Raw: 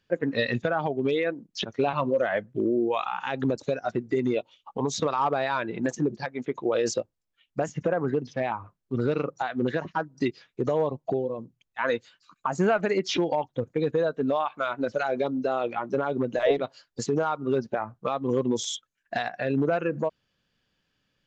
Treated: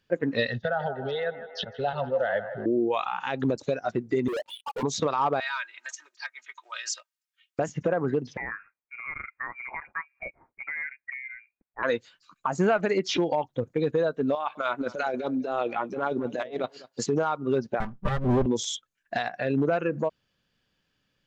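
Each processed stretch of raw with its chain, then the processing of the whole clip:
0:00.48–0:02.66: phaser with its sweep stopped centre 1,600 Hz, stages 8 + delay with a band-pass on its return 157 ms, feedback 63%, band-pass 1,000 Hz, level −10 dB
0:04.28–0:04.83: expanding power law on the bin magnitudes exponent 2.5 + high-pass filter 810 Hz + leveller curve on the samples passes 5
0:05.40–0:07.59: high-pass filter 1,300 Hz 24 dB per octave + comb filter 3.2 ms, depth 67%
0:08.37–0:11.83: high-pass filter 1,500 Hz 6 dB per octave + voice inversion scrambler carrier 2,600 Hz
0:14.35–0:17.06: Bessel high-pass filter 180 Hz + compressor whose output falls as the input rises −28 dBFS, ratio −0.5 + single-tap delay 201 ms −19.5 dB
0:17.80–0:18.46: lower of the sound and its delayed copy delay 5.1 ms + bass and treble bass +13 dB, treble −7 dB
whole clip: no processing

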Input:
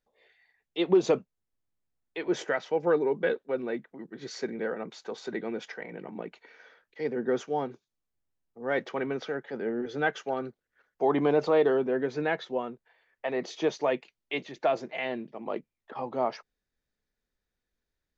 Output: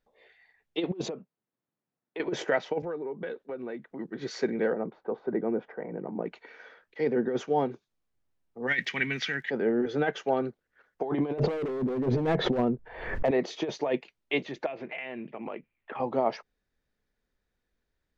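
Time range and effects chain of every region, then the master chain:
0:01.08–0:02.20: downward compressor 16 to 1, threshold −36 dBFS + high-pass filter 140 Hz 24 dB per octave + high-shelf EQ 2,600 Hz −10.5 dB
0:02.82–0:03.90: downward compressor, threshold −38 dBFS + multiband upward and downward expander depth 70%
0:04.73–0:06.26: low-pass filter 1,000 Hz + one half of a high-frequency compander decoder only
0:08.66–0:09.49: drawn EQ curve 180 Hz 0 dB, 370 Hz −11 dB, 540 Hz −17 dB, 1,300 Hz −4 dB, 1,900 Hz +14 dB, 3,800 Hz +9 dB, 8,400 Hz +12 dB + surface crackle 95 per second −52 dBFS
0:11.38–0:13.31: spectral tilt −4.5 dB per octave + gain into a clipping stage and back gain 22 dB + background raised ahead of every attack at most 68 dB per second
0:14.66–0:16.00: low-pass with resonance 2,500 Hz, resonance Q 3.3 + downward compressor 5 to 1, threshold −39 dBFS
whole clip: low-pass filter 3,200 Hz 6 dB per octave; dynamic equaliser 1,300 Hz, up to −5 dB, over −43 dBFS, Q 1.9; compressor whose output falls as the input rises −28 dBFS, ratio −0.5; level +3 dB

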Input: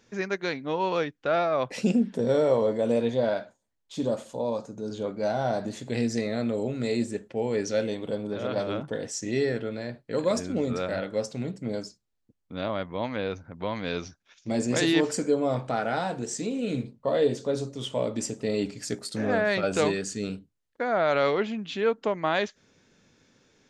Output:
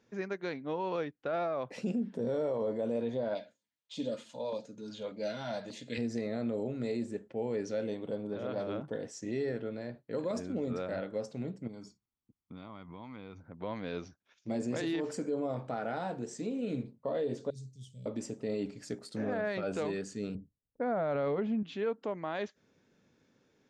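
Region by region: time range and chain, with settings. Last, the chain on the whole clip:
0:03.35–0:05.98: meter weighting curve D + auto-filter notch saw down 1.7 Hz 220–1,700 Hz + notch comb filter 380 Hz
0:11.67–0:13.40: comb filter 0.9 ms, depth 64% + downward compressor, threshold −36 dBFS
0:17.50–0:18.06: Chebyshev band-stop filter 130–6,300 Hz + parametric band 290 Hz −12.5 dB 0.45 octaves
0:20.35–0:21.63: low-pass that shuts in the quiet parts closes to 580 Hz, open at −22.5 dBFS + spectral tilt −3 dB per octave + notch filter 350 Hz, Q 5.5
whole clip: high-pass filter 270 Hz 6 dB per octave; spectral tilt −2.5 dB per octave; brickwall limiter −18.5 dBFS; level −7 dB

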